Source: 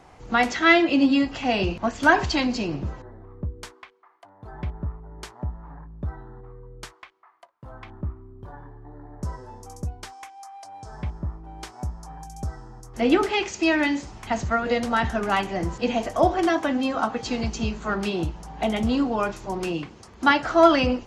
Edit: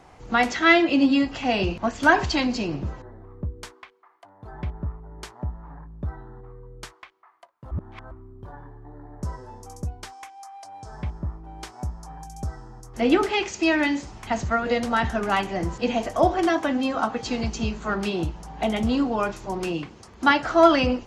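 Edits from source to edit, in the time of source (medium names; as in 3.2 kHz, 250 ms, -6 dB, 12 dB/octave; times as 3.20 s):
7.71–8.11 s: reverse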